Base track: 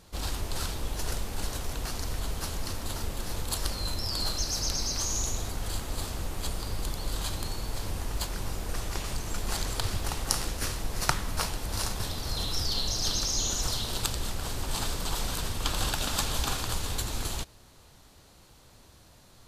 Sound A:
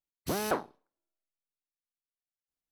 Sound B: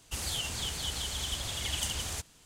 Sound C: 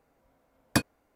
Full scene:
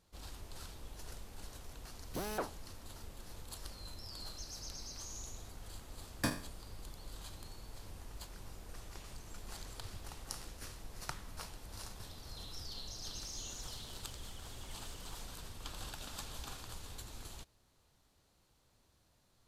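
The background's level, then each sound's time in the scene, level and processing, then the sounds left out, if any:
base track -16.5 dB
1.87 s: add A -8.5 dB
5.48 s: add C -12 dB + spectral sustain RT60 0.41 s
13.04 s: add B -16.5 dB + peak limiter -30 dBFS

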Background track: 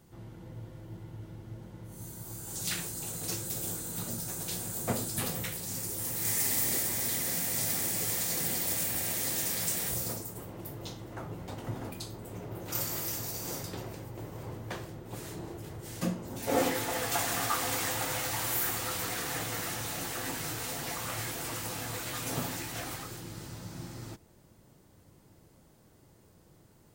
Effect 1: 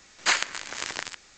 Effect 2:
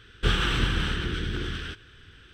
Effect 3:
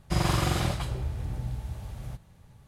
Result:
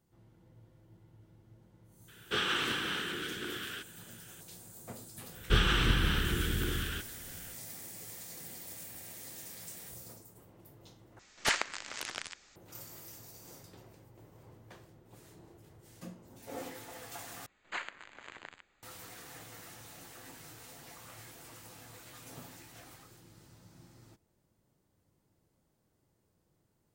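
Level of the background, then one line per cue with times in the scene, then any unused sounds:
background track -15 dB
2.08 s: add 2 -4 dB + high-pass 300 Hz
5.27 s: add 2 -2.5 dB, fades 0.10 s
11.19 s: replace with 1 -6.5 dB + loudspeaker Doppler distortion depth 0.6 ms
17.46 s: replace with 1 -13 dB + boxcar filter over 8 samples
not used: 3

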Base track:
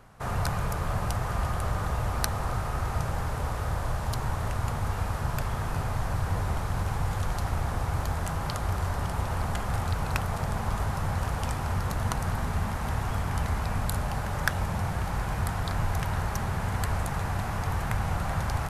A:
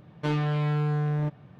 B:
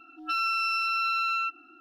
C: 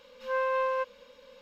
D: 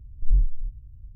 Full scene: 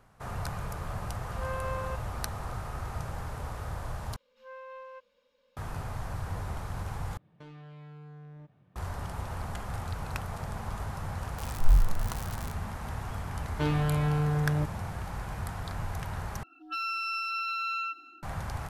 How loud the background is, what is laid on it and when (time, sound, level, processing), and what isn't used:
base track -7 dB
1.12 s: add C -8.5 dB
4.16 s: replace with C -17 dB
7.17 s: replace with A -13.5 dB + compression, threshold -32 dBFS
11.38 s: add D -1 dB + zero-crossing glitches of -19 dBFS
13.36 s: add A -1.5 dB
16.43 s: replace with B -5.5 dB + delay 278 ms -19.5 dB

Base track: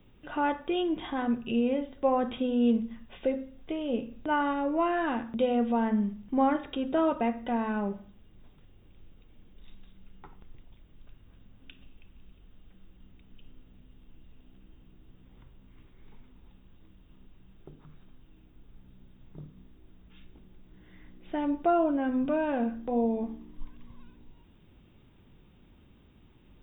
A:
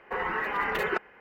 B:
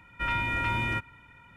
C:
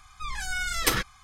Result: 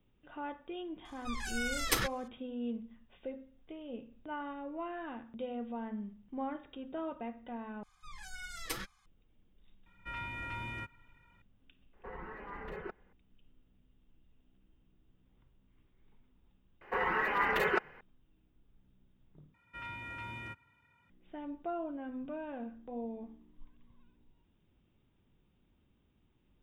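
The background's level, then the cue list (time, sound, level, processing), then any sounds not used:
base track -13.5 dB
1.05 s: add C -6.5 dB
7.83 s: replace with C -11.5 dB + flange 1.8 Hz, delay 4.3 ms, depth 2.4 ms, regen +40%
9.86 s: add B -12.5 dB
11.93 s: add A -17 dB + tilt EQ -3.5 dB/octave
16.81 s: add A -1.5 dB
19.54 s: replace with B -15 dB + high-pass 69 Hz

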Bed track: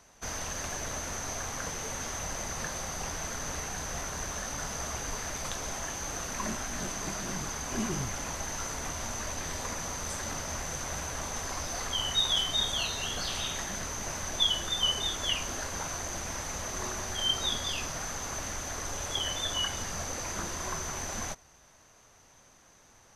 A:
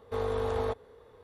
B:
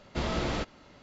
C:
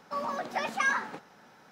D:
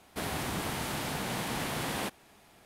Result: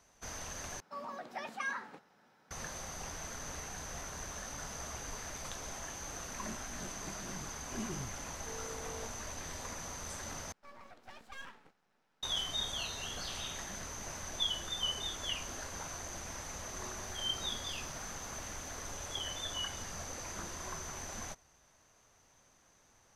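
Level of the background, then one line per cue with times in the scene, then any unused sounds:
bed track -7.5 dB
0.80 s: replace with C -10.5 dB
8.34 s: add A -16 dB + high-pass 160 Hz
10.52 s: replace with C -17 dB + half-wave rectifier
16.86 s: add D -17 dB + compression, threshold -36 dBFS
not used: B

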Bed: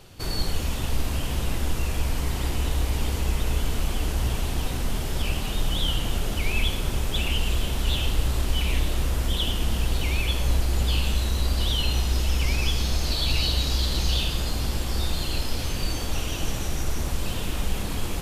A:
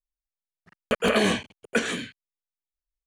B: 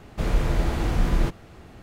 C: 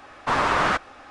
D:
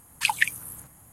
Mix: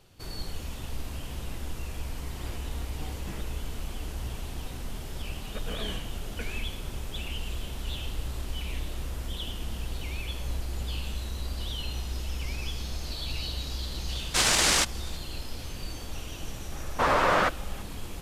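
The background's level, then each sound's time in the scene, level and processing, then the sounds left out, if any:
bed -10 dB
2.16 s: add B -5.5 dB + resonator arpeggio 7.2 Hz 64–1300 Hz
4.64 s: add A -17.5 dB
14.07 s: add C -2 dB + noise-vocoded speech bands 1
16.72 s: add C -3 dB + peaking EQ 540 Hz +7.5 dB 0.47 oct
not used: D

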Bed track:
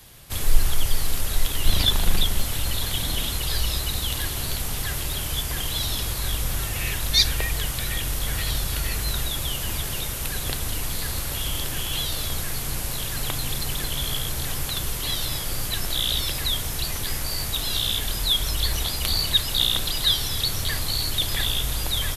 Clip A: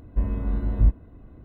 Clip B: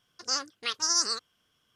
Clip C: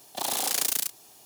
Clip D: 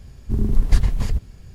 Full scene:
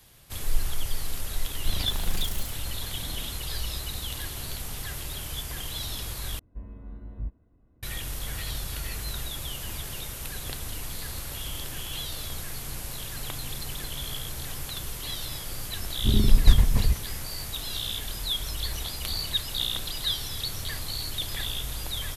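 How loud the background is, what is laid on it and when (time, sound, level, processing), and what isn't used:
bed track -7.5 dB
1.63 s: add C -13 dB + spectral noise reduction 8 dB
6.39 s: replace with A -16 dB
15.75 s: add D -0.5 dB + local Wiener filter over 9 samples
not used: B

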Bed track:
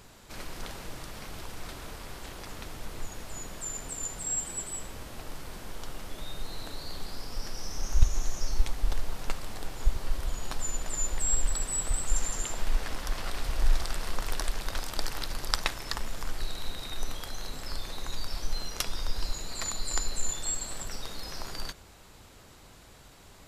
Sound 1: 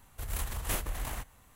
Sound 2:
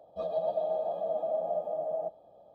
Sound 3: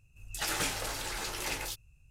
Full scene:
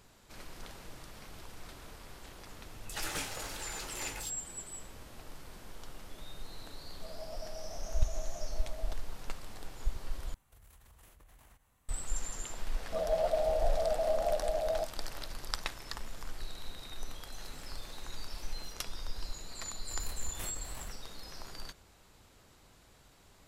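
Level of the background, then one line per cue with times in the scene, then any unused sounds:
bed track -8 dB
2.55 s: add 3 -5.5 dB
6.85 s: add 2 -16 dB
10.34 s: replace with 1 -11.5 dB + compression 8:1, threshold -44 dBFS
12.76 s: add 2
16.98 s: add 3 -12.5 dB + compression, threshold -39 dBFS
19.70 s: add 1 -10 dB

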